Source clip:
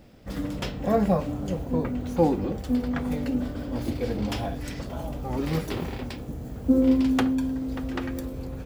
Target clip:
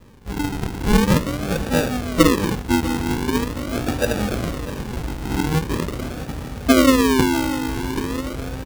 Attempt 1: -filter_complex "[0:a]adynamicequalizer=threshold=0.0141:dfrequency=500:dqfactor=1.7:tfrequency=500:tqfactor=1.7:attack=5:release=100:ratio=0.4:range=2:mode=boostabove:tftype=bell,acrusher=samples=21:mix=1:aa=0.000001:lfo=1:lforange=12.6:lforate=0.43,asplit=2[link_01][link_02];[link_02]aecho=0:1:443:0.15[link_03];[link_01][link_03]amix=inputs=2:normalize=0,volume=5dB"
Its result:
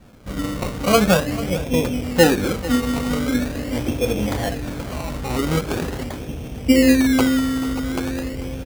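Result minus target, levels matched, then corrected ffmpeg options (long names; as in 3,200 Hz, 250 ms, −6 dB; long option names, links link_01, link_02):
sample-and-hold swept by an LFO: distortion −13 dB; echo 206 ms early
-filter_complex "[0:a]adynamicequalizer=threshold=0.0141:dfrequency=500:dqfactor=1.7:tfrequency=500:tqfactor=1.7:attack=5:release=100:ratio=0.4:range=2:mode=boostabove:tftype=bell,acrusher=samples=59:mix=1:aa=0.000001:lfo=1:lforange=35.4:lforate=0.43,asplit=2[link_01][link_02];[link_02]aecho=0:1:649:0.15[link_03];[link_01][link_03]amix=inputs=2:normalize=0,volume=5dB"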